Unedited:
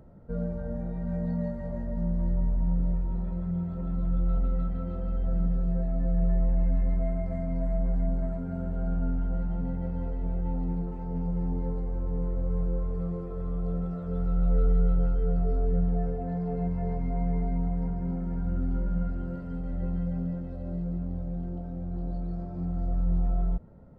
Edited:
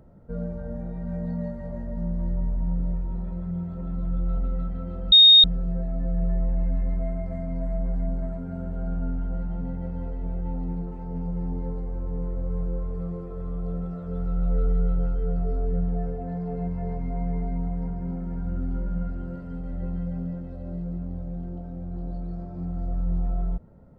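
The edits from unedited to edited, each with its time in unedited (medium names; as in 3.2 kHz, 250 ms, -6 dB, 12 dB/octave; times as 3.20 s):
5.12–5.44 s: bleep 3.71 kHz -8.5 dBFS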